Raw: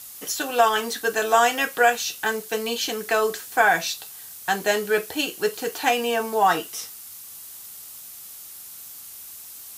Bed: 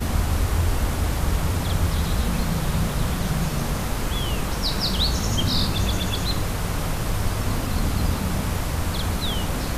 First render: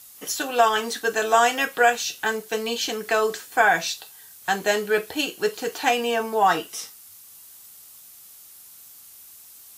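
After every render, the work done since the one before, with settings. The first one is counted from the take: noise print and reduce 6 dB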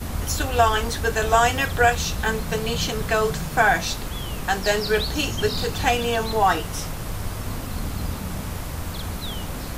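add bed -5.5 dB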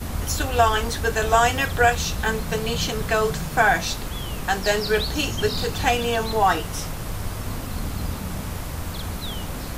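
no audible change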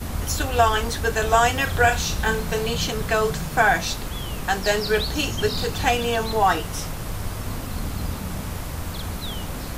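1.63–2.67 s: flutter echo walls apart 5.9 m, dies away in 0.26 s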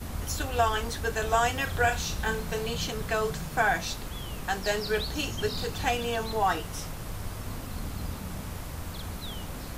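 trim -7 dB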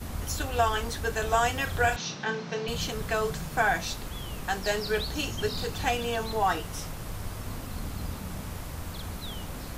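1.96–2.68 s: Chebyshev band-pass 130–5900 Hz, order 4

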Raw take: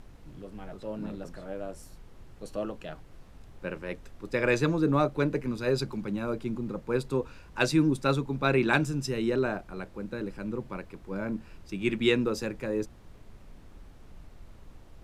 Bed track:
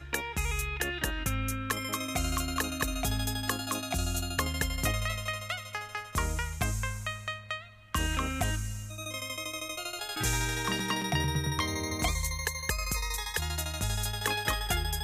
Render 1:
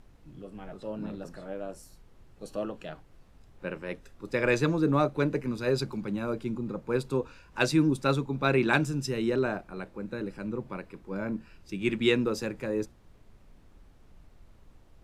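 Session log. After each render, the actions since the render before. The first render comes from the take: noise print and reduce 6 dB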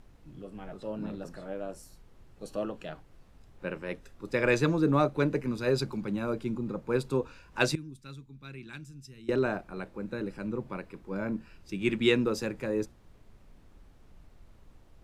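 7.75–9.29 s: amplifier tone stack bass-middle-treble 6-0-2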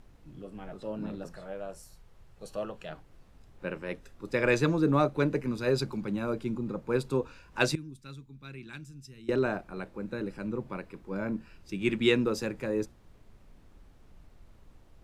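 1.28–2.91 s: peaking EQ 280 Hz -9.5 dB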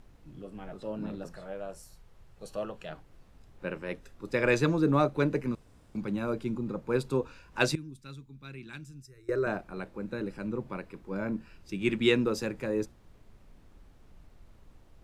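5.55–5.95 s: room tone; 9.02–9.47 s: static phaser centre 840 Hz, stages 6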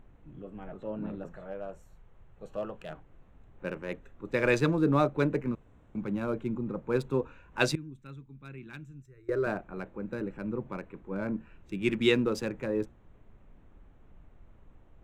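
local Wiener filter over 9 samples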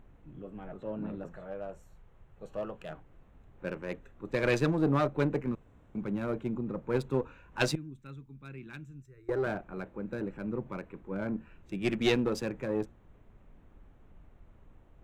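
single-diode clipper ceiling -24.5 dBFS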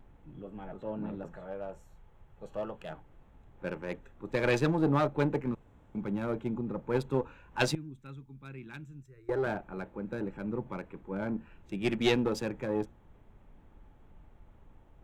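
vibrato 0.45 Hz 14 cents; small resonant body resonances 860/3300 Hz, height 8 dB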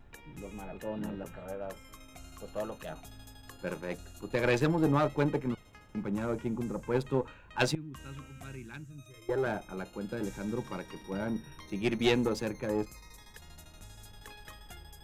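add bed track -20 dB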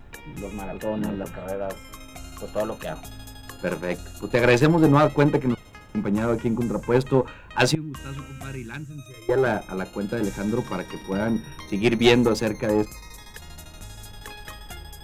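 trim +10 dB; peak limiter -2 dBFS, peak gain reduction 2.5 dB

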